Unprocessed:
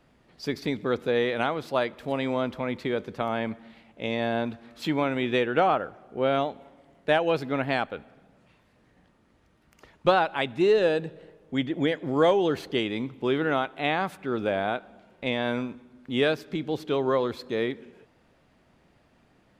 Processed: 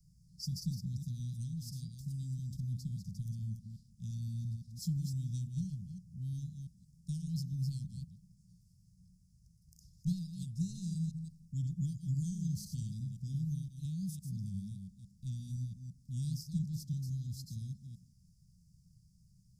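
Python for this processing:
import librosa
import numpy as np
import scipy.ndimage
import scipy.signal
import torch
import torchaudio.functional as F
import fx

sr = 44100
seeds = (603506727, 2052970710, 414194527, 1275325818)

y = fx.reverse_delay(x, sr, ms=171, wet_db=-6)
y = scipy.signal.sosfilt(scipy.signal.cheby1(5, 1.0, [180.0, 5100.0], 'bandstop', fs=sr, output='sos'), y)
y = y * 10.0 ** (2.5 / 20.0)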